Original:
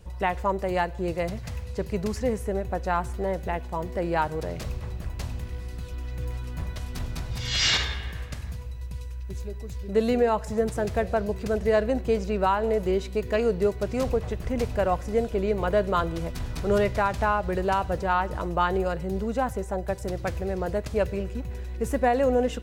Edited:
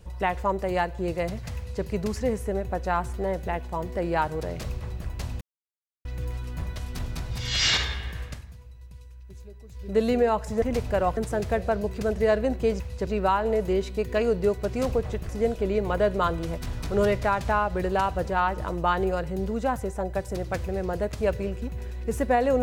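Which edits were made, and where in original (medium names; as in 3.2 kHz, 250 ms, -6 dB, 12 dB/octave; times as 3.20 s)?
1.57–1.84 s: copy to 12.25 s
5.41–6.05 s: mute
8.28–9.90 s: dip -10 dB, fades 0.18 s
14.47–15.02 s: move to 10.62 s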